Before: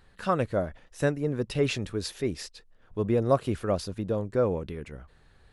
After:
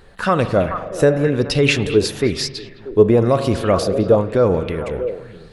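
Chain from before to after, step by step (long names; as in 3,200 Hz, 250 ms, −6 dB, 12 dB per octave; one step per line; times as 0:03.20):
echo through a band-pass that steps 211 ms, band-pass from 2,700 Hz, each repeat −1.4 octaves, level −9.5 dB
spring reverb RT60 1.5 s, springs 42 ms, chirp 65 ms, DRR 11.5 dB
boost into a limiter +16 dB
auto-filter bell 1 Hz 410–5,200 Hz +9 dB
level −5 dB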